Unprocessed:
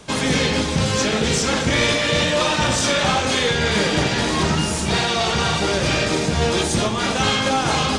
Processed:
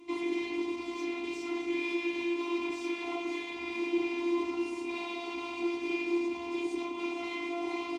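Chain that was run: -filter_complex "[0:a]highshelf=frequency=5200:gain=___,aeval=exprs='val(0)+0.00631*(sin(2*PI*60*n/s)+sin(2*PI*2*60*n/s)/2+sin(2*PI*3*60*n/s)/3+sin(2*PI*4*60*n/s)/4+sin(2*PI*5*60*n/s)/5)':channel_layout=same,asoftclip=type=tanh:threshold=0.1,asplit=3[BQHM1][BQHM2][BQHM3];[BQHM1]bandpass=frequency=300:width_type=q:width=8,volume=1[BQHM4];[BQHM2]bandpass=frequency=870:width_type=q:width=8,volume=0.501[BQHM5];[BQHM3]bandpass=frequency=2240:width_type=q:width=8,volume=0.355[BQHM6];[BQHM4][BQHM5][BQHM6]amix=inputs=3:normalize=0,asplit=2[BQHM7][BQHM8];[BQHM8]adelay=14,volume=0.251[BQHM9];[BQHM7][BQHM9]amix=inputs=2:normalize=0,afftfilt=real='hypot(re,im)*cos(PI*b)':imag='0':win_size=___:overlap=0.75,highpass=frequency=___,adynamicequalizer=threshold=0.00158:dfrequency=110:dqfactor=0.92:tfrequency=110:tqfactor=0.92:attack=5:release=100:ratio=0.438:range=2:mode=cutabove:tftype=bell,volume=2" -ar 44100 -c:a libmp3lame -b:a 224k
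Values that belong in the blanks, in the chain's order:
4, 512, 65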